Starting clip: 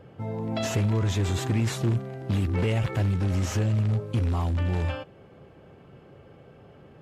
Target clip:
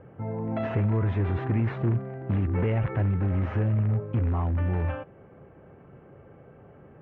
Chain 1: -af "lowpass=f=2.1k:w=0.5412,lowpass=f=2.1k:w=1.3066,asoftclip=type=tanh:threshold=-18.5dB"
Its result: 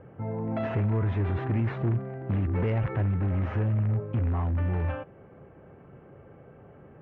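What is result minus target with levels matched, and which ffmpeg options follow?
soft clip: distortion +15 dB
-af "lowpass=f=2.1k:w=0.5412,lowpass=f=2.1k:w=1.3066,asoftclip=type=tanh:threshold=-10dB"

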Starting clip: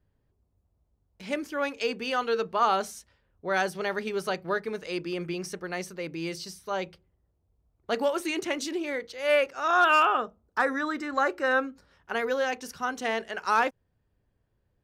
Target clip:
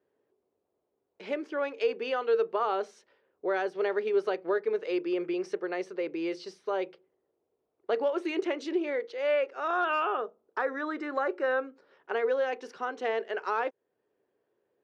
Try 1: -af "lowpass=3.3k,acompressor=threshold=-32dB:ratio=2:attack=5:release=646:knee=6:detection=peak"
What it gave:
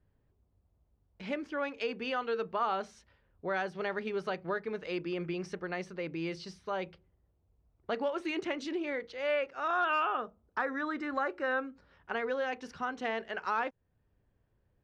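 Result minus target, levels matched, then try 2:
500 Hz band -3.0 dB
-af "lowpass=3.3k,acompressor=threshold=-32dB:ratio=2:attack=5:release=646:knee=6:detection=peak,highpass=f=400:t=q:w=2.9"

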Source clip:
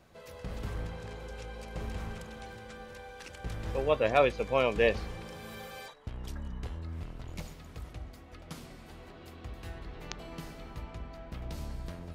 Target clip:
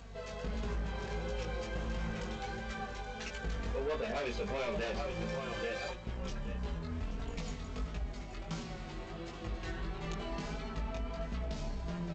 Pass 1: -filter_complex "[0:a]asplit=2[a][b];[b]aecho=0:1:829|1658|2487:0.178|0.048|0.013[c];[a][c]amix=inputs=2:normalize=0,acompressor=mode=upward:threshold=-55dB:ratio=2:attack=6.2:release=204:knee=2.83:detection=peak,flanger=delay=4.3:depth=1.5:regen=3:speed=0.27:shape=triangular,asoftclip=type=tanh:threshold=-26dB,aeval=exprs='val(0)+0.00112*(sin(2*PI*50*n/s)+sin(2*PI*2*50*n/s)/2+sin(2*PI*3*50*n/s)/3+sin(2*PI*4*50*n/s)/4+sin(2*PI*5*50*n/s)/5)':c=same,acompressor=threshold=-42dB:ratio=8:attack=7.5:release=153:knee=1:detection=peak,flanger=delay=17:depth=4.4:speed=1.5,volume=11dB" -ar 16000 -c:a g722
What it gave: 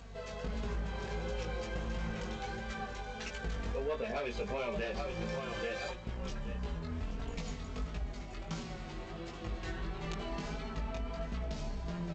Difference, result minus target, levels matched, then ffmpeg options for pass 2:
soft clip: distortion -6 dB
-filter_complex "[0:a]asplit=2[a][b];[b]aecho=0:1:829|1658|2487:0.178|0.048|0.013[c];[a][c]amix=inputs=2:normalize=0,acompressor=mode=upward:threshold=-55dB:ratio=2:attack=6.2:release=204:knee=2.83:detection=peak,flanger=delay=4.3:depth=1.5:regen=3:speed=0.27:shape=triangular,asoftclip=type=tanh:threshold=-33.5dB,aeval=exprs='val(0)+0.00112*(sin(2*PI*50*n/s)+sin(2*PI*2*50*n/s)/2+sin(2*PI*3*50*n/s)/3+sin(2*PI*4*50*n/s)/4+sin(2*PI*5*50*n/s)/5)':c=same,acompressor=threshold=-42dB:ratio=8:attack=7.5:release=153:knee=1:detection=peak,flanger=delay=17:depth=4.4:speed=1.5,volume=11dB" -ar 16000 -c:a g722

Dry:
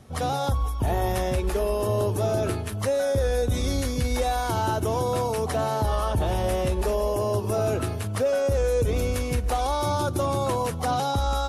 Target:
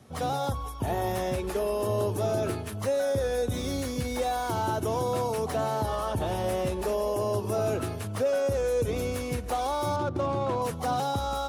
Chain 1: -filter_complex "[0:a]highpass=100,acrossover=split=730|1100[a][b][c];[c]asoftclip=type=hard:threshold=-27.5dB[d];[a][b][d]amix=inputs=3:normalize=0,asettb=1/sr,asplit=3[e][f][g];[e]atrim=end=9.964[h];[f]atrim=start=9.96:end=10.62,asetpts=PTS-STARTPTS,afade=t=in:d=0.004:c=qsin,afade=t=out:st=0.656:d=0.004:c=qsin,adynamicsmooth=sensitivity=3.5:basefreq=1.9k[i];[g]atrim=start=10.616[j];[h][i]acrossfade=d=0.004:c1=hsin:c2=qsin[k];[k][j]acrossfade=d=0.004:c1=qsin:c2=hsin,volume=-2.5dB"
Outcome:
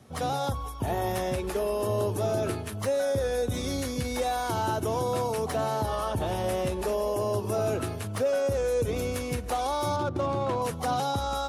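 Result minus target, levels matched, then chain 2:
hard clip: distortion -12 dB
-filter_complex "[0:a]highpass=100,acrossover=split=730|1100[a][b][c];[c]asoftclip=type=hard:threshold=-34dB[d];[a][b][d]amix=inputs=3:normalize=0,asettb=1/sr,asplit=3[e][f][g];[e]atrim=end=9.964[h];[f]atrim=start=9.96:end=10.62,asetpts=PTS-STARTPTS,afade=t=in:d=0.004:c=qsin,afade=t=out:st=0.656:d=0.004:c=qsin,adynamicsmooth=sensitivity=3.5:basefreq=1.9k[i];[g]atrim=start=10.616[j];[h][i]acrossfade=d=0.004:c1=hsin:c2=qsin[k];[k][j]acrossfade=d=0.004:c1=qsin:c2=hsin,volume=-2.5dB"

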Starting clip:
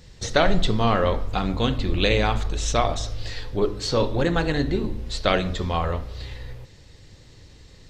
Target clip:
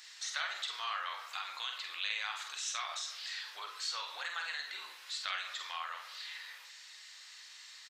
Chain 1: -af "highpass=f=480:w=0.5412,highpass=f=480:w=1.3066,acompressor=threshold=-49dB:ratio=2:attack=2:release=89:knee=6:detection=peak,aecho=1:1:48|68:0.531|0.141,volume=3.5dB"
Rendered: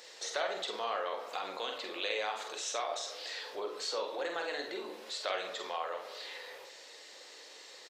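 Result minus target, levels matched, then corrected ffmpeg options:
500 Hz band +20.0 dB
-af "highpass=f=1.2k:w=0.5412,highpass=f=1.2k:w=1.3066,acompressor=threshold=-49dB:ratio=2:attack=2:release=89:knee=6:detection=peak,aecho=1:1:48|68:0.531|0.141,volume=3.5dB"

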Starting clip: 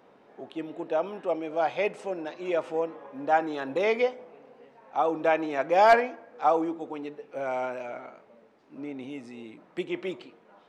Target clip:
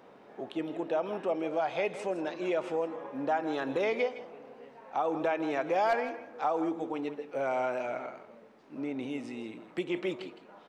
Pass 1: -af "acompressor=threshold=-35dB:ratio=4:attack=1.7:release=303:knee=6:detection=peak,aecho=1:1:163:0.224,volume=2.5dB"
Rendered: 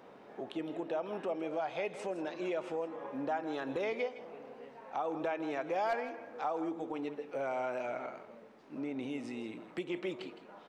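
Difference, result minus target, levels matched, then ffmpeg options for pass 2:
compressor: peak gain reduction +5.5 dB
-af "acompressor=threshold=-27.5dB:ratio=4:attack=1.7:release=303:knee=6:detection=peak,aecho=1:1:163:0.224,volume=2.5dB"

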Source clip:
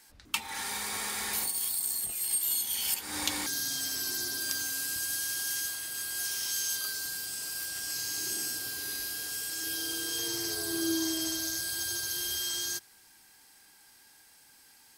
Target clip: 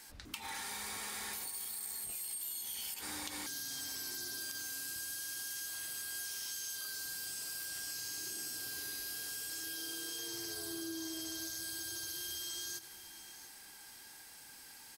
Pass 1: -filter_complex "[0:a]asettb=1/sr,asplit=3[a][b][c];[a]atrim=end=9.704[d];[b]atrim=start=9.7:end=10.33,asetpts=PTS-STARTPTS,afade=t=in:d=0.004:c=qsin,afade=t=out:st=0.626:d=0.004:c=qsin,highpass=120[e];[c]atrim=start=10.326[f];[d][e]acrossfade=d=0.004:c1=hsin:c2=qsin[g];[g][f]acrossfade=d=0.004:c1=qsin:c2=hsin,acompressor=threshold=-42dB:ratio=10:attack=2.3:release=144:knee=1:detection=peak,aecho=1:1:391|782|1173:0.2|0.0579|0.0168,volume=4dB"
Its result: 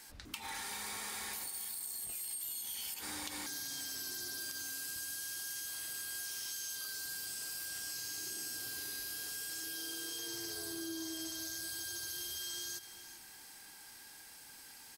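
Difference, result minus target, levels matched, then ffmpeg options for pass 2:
echo 0.301 s early
-filter_complex "[0:a]asettb=1/sr,asplit=3[a][b][c];[a]atrim=end=9.704[d];[b]atrim=start=9.7:end=10.33,asetpts=PTS-STARTPTS,afade=t=in:d=0.004:c=qsin,afade=t=out:st=0.626:d=0.004:c=qsin,highpass=120[e];[c]atrim=start=10.326[f];[d][e]acrossfade=d=0.004:c1=hsin:c2=qsin[g];[g][f]acrossfade=d=0.004:c1=qsin:c2=hsin,acompressor=threshold=-42dB:ratio=10:attack=2.3:release=144:knee=1:detection=peak,aecho=1:1:692|1384|2076:0.2|0.0579|0.0168,volume=4dB"

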